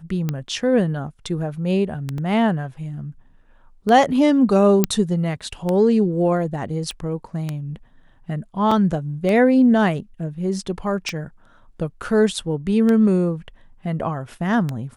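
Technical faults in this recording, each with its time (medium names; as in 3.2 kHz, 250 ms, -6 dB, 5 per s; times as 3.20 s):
tick 33 1/3 rpm -11 dBFS
2.18 s: dropout 2.2 ms
4.84 s: pop -2 dBFS
6.91 s: pop -17 dBFS
8.71 s: dropout 4.4 ms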